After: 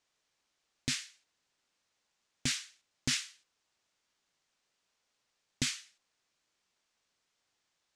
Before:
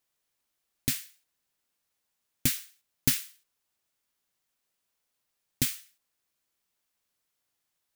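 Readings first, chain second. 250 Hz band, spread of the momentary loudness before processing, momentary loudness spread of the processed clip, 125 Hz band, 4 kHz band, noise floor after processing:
-5.0 dB, 9 LU, 15 LU, -6.5 dB, +0.5 dB, -82 dBFS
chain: LPF 7200 Hz 24 dB/oct; low shelf 200 Hz -4.5 dB; limiter -23 dBFS, peak gain reduction 10 dB; gain +4.5 dB

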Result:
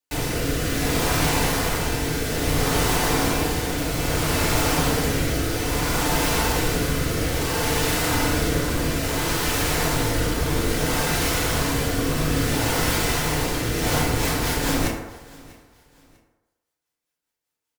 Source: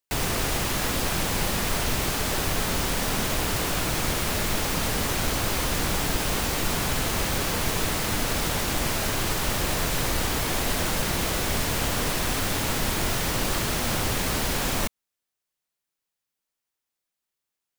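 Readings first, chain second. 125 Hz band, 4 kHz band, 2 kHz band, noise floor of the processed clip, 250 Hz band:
+5.0 dB, +1.5 dB, +3.0 dB, -83 dBFS, +6.0 dB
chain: de-hum 100.9 Hz, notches 30; rotary speaker horn 0.6 Hz, later 5 Hz, at 13.52; on a send: feedback echo 0.645 s, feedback 31%, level -22.5 dB; on the sum: FDN reverb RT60 1.1 s, low-frequency decay 0.7×, high-frequency decay 0.4×, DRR -5.5 dB

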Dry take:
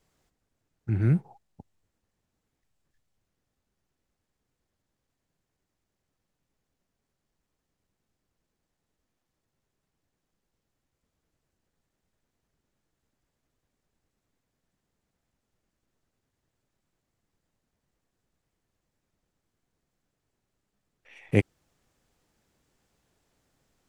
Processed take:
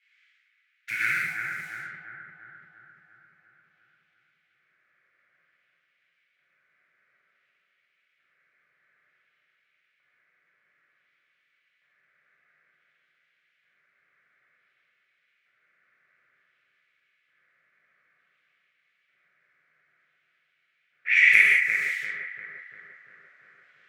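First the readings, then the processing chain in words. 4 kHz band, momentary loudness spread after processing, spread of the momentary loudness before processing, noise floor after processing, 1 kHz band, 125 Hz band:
n/a, 23 LU, 13 LU, -73 dBFS, +10.0 dB, under -25 dB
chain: G.711 law mismatch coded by mu; low-pass opened by the level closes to 540 Hz, open at -40.5 dBFS; EQ curve 160 Hz 0 dB, 230 Hz -11 dB, 970 Hz -20 dB, 1500 Hz +5 dB, 2200 Hz +15 dB; compressor 5:1, threshold -30 dBFS, peak gain reduction 16.5 dB; LFO high-pass square 0.55 Hz 590–3000 Hz; band shelf 1600 Hz +14 dB 1.3 oct; on a send: analogue delay 0.346 s, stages 4096, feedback 61%, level -4 dB; on the sum: non-linear reverb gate 0.22 s flat, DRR -5 dB

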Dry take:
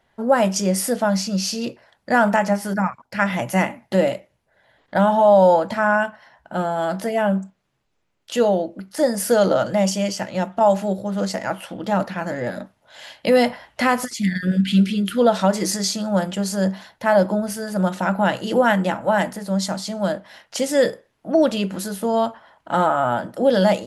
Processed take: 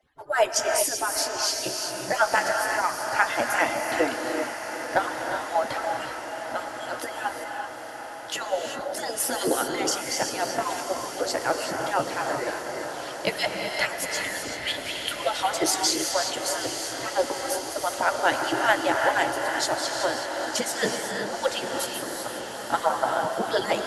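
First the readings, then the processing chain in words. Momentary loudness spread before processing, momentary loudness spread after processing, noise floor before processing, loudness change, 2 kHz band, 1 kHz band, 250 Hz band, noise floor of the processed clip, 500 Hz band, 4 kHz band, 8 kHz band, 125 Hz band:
9 LU, 9 LU, -69 dBFS, -6.0 dB, -0.5 dB, -4.0 dB, -14.0 dB, -36 dBFS, -8.0 dB, +1.5 dB, +2.0 dB, -18.5 dB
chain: median-filter separation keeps percussive; diffused feedback echo 0.879 s, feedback 72%, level -10 dB; non-linear reverb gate 0.41 s rising, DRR 3 dB; added harmonics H 2 -26 dB, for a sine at -5.5 dBFS

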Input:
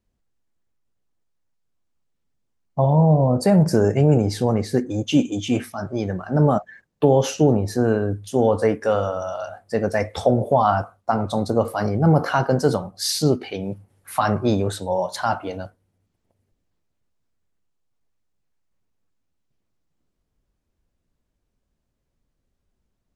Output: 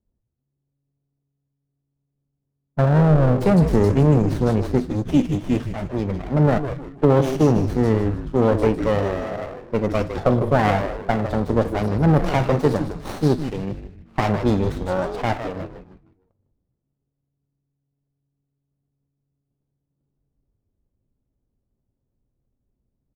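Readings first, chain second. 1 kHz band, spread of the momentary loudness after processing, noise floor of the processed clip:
-2.0 dB, 11 LU, -78 dBFS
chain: low-pass opened by the level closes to 580 Hz, open at -16.5 dBFS; frequency-shifting echo 0.154 s, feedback 38%, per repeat -140 Hz, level -8 dB; running maximum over 17 samples

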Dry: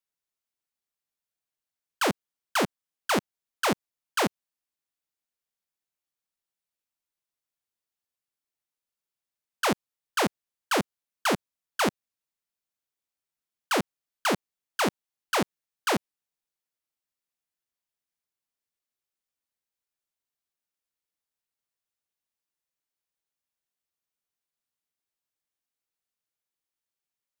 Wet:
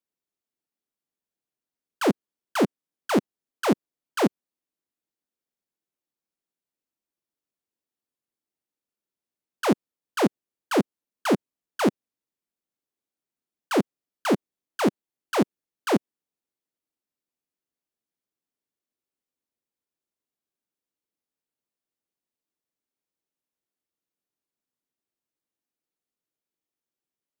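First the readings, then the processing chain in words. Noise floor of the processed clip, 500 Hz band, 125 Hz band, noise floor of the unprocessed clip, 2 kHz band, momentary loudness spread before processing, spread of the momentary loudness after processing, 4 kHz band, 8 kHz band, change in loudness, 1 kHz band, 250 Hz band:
under -85 dBFS, +4.5 dB, +4.0 dB, under -85 dBFS, -3.5 dB, 6 LU, 8 LU, -4.0 dB, -4.5 dB, +2.5 dB, -1.0 dB, +7.5 dB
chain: bell 290 Hz +13 dB 2.1 oct; gain -4.5 dB

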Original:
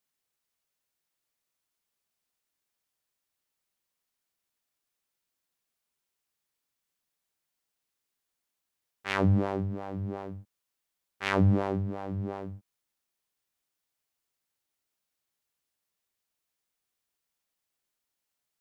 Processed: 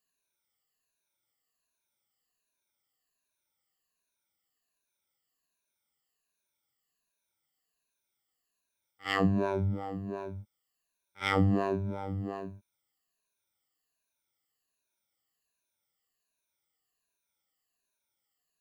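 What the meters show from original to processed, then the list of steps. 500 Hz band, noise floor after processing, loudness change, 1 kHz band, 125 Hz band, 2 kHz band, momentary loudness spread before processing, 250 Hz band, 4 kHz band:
0.0 dB, -85 dBFS, -2.0 dB, +0.5 dB, -3.5 dB, -0.5 dB, 16 LU, -1.0 dB, +1.5 dB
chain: moving spectral ripple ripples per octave 1.5, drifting -1.3 Hz, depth 18 dB; pre-echo 54 ms -17.5 dB; gain -3.5 dB

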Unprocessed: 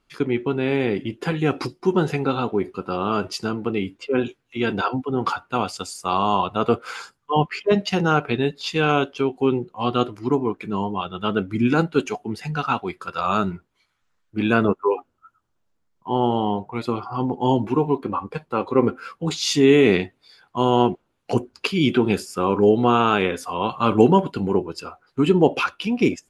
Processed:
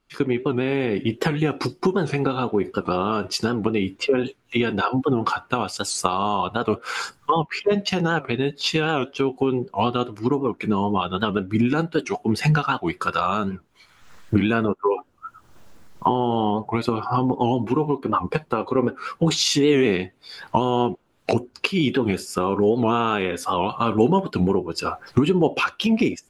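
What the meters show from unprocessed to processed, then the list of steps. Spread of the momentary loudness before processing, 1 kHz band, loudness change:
10 LU, -0.5 dB, -0.5 dB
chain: recorder AGC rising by 41 dB/s; record warp 78 rpm, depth 160 cents; gain -3.5 dB

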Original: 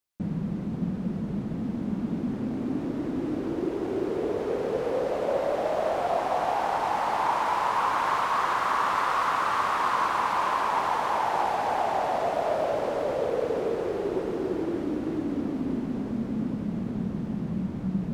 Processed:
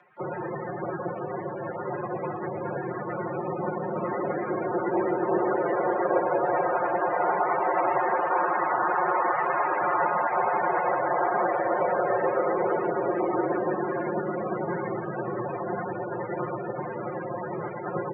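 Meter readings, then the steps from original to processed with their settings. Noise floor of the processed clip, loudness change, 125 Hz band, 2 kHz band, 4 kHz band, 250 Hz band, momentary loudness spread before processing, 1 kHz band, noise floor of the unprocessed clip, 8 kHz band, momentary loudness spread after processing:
-34 dBFS, +0.5 dB, -3.5 dB, +1.5 dB, under -25 dB, -3.0 dB, 6 LU, +0.5 dB, -33 dBFS, under -30 dB, 9 LU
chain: spectral contrast lowered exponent 0.3; on a send: feedback echo 0.111 s, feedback 35%, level -7.5 dB; on the sum: careless resampling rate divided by 3×, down filtered, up hold; loudest bins only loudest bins 32; mistuned SSB -260 Hz 250–2200 Hz; resonant low shelf 210 Hz -7.5 dB, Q 1.5; upward compressor, threshold -38 dBFS; frequency shift +93 Hz; comb 5.6 ms, depth 97%; gain +3 dB

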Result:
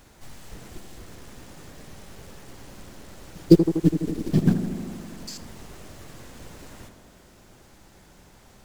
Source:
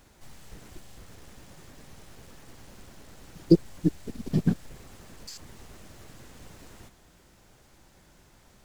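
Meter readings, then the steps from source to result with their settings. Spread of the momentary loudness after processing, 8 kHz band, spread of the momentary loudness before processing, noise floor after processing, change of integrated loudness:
21 LU, +5.0 dB, 21 LU, -53 dBFS, +5.0 dB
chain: in parallel at -7.5 dB: short-mantissa float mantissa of 2-bit; on the sum: tape echo 82 ms, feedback 89%, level -7 dB, low-pass 1400 Hz; gain +1.5 dB

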